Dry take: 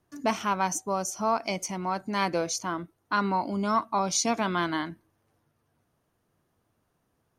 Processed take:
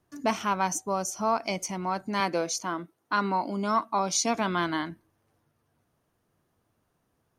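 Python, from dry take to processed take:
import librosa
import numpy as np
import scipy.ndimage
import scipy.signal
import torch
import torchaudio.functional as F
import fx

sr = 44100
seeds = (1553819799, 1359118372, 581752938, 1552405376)

y = fx.highpass(x, sr, hz=170.0, slope=12, at=(2.2, 4.35))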